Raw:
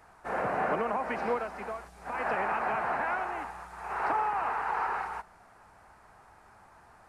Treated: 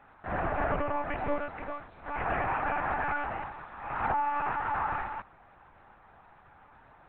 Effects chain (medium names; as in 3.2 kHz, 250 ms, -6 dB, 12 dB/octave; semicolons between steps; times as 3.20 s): monotone LPC vocoder at 8 kHz 290 Hz